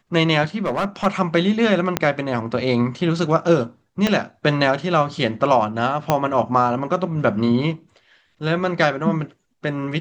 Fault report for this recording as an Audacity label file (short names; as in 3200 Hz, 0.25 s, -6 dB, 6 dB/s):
0.660000	1.070000	clipped -16.5 dBFS
1.970000	1.970000	pop -3 dBFS
4.070000	4.070000	pop -5 dBFS
6.100000	6.100000	pop -3 dBFS